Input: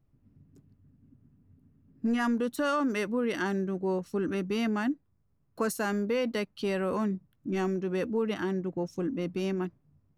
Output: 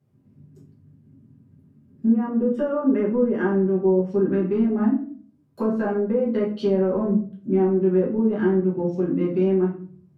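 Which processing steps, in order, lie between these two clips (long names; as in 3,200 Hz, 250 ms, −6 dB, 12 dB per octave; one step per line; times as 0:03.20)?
high-pass filter 110 Hz 24 dB per octave
treble cut that deepens with the level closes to 650 Hz, closed at −24.5 dBFS
low-shelf EQ 150 Hz +7 dB
hum removal 161 Hz, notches 4
0:02.07–0:04.10: Butterworth band-reject 4,100 Hz, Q 3
rectangular room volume 38 cubic metres, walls mixed, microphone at 1.2 metres
level −1.5 dB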